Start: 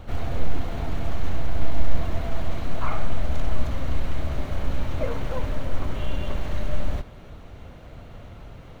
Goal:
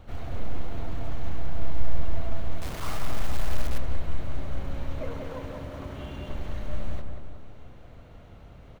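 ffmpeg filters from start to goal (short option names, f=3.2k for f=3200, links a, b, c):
-filter_complex "[0:a]asettb=1/sr,asplit=3[a][b][c];[a]atrim=end=2.564[d];[b]atrim=start=2.56:end=3.78,asetpts=PTS-STARTPTS,afade=t=in:d=0.004:c=qsin,afade=t=out:st=1.216:d=0.004:c=qsin,acrusher=bits=6:dc=4:mix=0:aa=0.000001[e];[c]atrim=start=3.776[f];[d][e]acrossfade=d=0.004:c1=hsin:c2=qsin[g];[g][f]acrossfade=d=0.004:c1=qsin:c2=hsin,asettb=1/sr,asplit=3[h][i][j];[h]atrim=end=4.994[k];[i]atrim=start=4.99:end=6.3,asetpts=PTS-STARTPTS,afade=t=in:d=0.004:c=qsin,afade=t=out:st=1.306:d=0.004:c=qsin,highpass=66[l];[j]atrim=start=6.296[m];[k][l]acrossfade=d=0.004:c1=hsin:c2=qsin[n];[n][m]acrossfade=d=0.004:c1=qsin:c2=hsin,asplit=2[o][p];[p]adelay=186,lowpass=f=1.6k:p=1,volume=-4dB,asplit=2[q][r];[r]adelay=186,lowpass=f=1.6k:p=1,volume=0.54,asplit=2[s][t];[t]adelay=186,lowpass=f=1.6k:p=1,volume=0.54,asplit=2[u][v];[v]adelay=186,lowpass=f=1.6k:p=1,volume=0.54,asplit=2[w][x];[x]adelay=186,lowpass=f=1.6k:p=1,volume=0.54,asplit=2[y][z];[z]adelay=186,lowpass=f=1.6k:p=1,volume=0.54,asplit=2[aa][ab];[ab]adelay=186,lowpass=f=1.6k:p=1,volume=0.54[ac];[o][q][s][u][w][y][aa][ac]amix=inputs=8:normalize=0,volume=-7.5dB"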